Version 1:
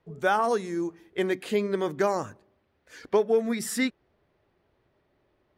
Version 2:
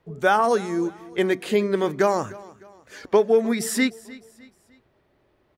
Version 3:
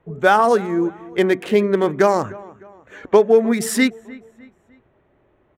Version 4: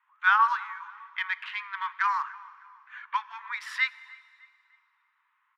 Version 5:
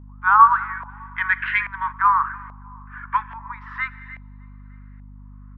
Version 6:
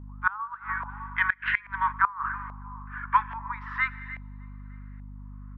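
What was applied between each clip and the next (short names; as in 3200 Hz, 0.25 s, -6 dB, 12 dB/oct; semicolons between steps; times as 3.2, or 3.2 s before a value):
feedback echo 0.304 s, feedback 41%, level -20.5 dB; gain +5 dB
Wiener smoothing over 9 samples; gain +5 dB
steep high-pass 950 Hz 96 dB/oct; air absorption 320 m; reverb RT60 2.4 s, pre-delay 3 ms, DRR 17 dB
LFO low-pass saw up 1.2 Hz 730–1900 Hz; spectral gain 0.89–1.92, 1400–7600 Hz +9 dB; hum 50 Hz, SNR 19 dB; gain +3.5 dB
flipped gate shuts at -9 dBFS, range -24 dB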